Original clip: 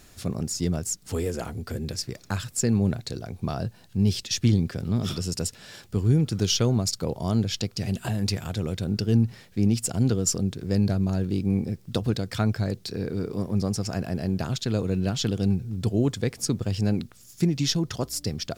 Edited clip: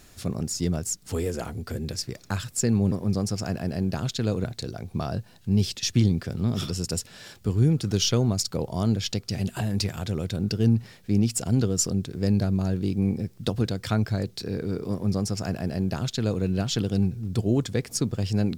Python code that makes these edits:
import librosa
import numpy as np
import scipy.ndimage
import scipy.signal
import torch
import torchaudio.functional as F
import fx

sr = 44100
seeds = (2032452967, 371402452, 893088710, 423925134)

y = fx.edit(x, sr, fx.duplicate(start_s=13.39, length_s=1.52, to_s=2.92), tone=tone)